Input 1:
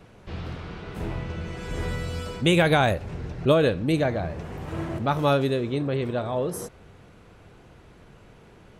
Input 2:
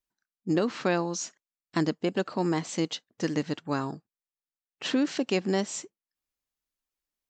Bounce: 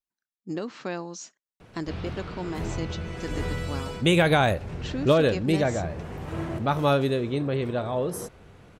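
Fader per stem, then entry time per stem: -0.5 dB, -6.5 dB; 1.60 s, 0.00 s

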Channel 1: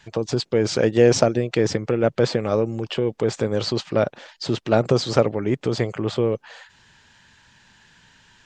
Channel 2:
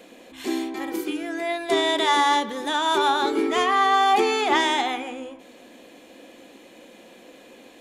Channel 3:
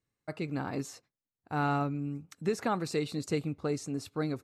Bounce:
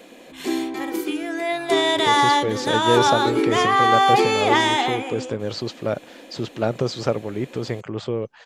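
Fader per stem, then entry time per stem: -4.5 dB, +2.5 dB, -16.5 dB; 1.90 s, 0.00 s, 0.00 s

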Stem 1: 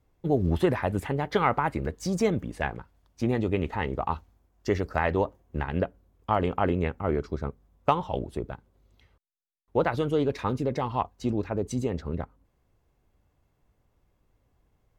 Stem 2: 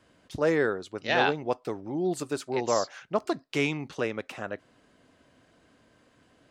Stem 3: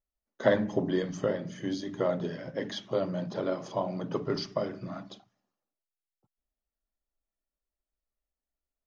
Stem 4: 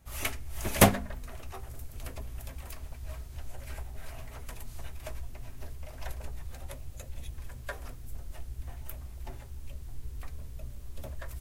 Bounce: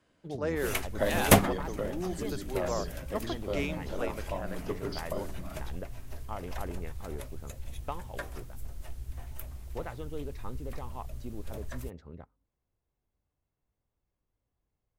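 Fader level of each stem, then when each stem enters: -15.0 dB, -8.0 dB, -6.0 dB, 0.0 dB; 0.00 s, 0.00 s, 0.55 s, 0.50 s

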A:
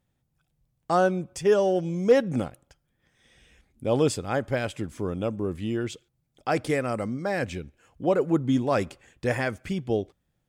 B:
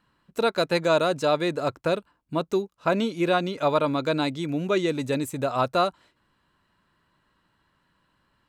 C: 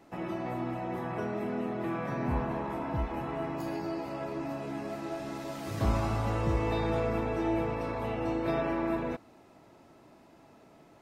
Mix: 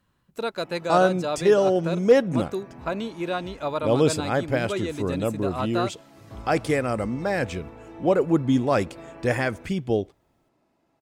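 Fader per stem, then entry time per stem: +2.5 dB, -5.5 dB, -12.5 dB; 0.00 s, 0.00 s, 0.50 s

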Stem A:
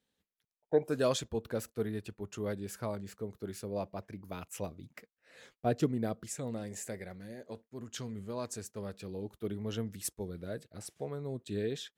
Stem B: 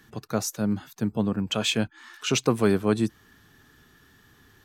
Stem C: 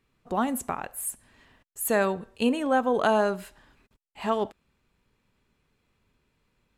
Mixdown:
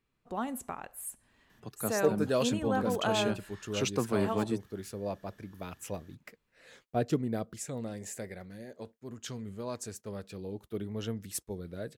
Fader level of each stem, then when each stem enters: +0.5 dB, -8.5 dB, -8.5 dB; 1.30 s, 1.50 s, 0.00 s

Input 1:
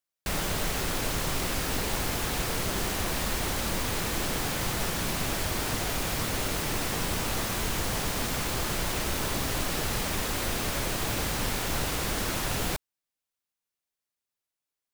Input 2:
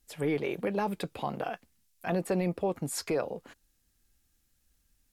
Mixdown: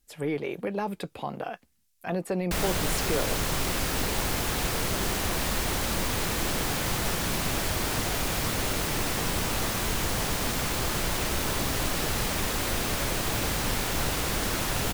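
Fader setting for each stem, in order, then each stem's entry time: +1.5 dB, 0.0 dB; 2.25 s, 0.00 s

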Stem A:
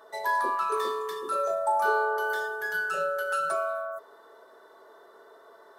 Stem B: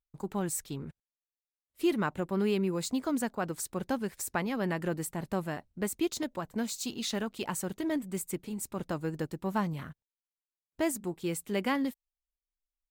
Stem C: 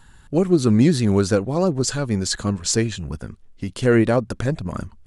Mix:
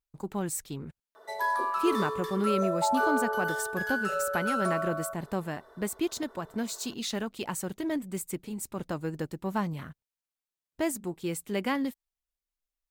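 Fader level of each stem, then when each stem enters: -2.0 dB, +0.5 dB, mute; 1.15 s, 0.00 s, mute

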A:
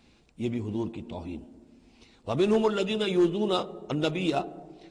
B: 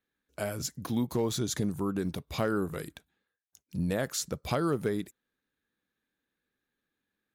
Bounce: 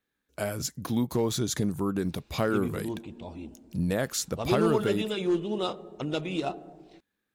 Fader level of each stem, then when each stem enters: -3.5 dB, +2.5 dB; 2.10 s, 0.00 s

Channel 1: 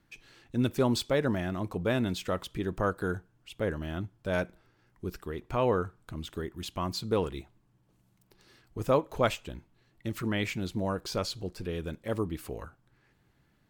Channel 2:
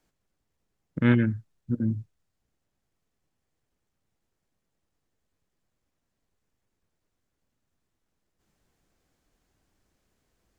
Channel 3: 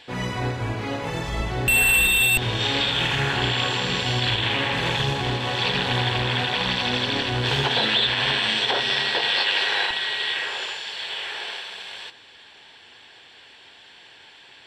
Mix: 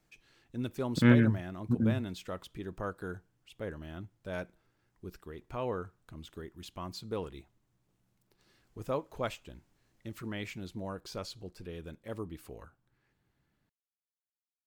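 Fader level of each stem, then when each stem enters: -8.5 dB, -1.5 dB, mute; 0.00 s, 0.00 s, mute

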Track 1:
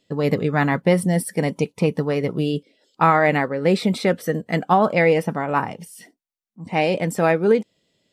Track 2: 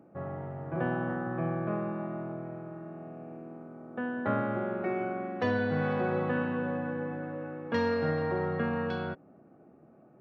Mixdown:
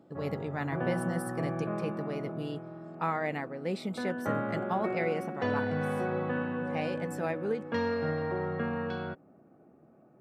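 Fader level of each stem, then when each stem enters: -15.5 dB, -2.0 dB; 0.00 s, 0.00 s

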